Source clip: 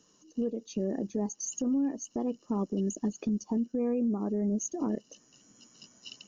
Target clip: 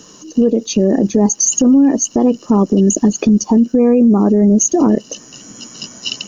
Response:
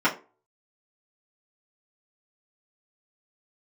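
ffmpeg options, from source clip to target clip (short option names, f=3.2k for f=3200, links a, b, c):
-af "alimiter=level_in=27.5dB:limit=-1dB:release=50:level=0:latency=1,volume=-3.5dB"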